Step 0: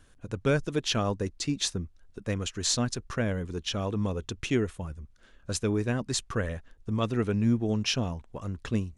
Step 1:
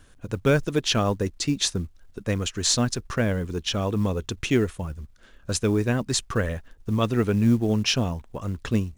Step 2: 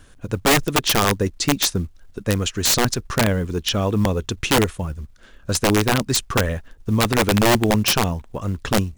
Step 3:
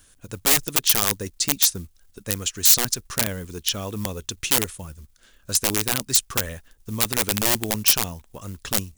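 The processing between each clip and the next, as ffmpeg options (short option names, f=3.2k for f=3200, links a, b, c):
-af "acrusher=bits=8:mode=log:mix=0:aa=0.000001,volume=5dB"
-af "aeval=exprs='(mod(5.62*val(0)+1,2)-1)/5.62':c=same,volume=5dB"
-af "crystalizer=i=4.5:c=0,volume=-11dB"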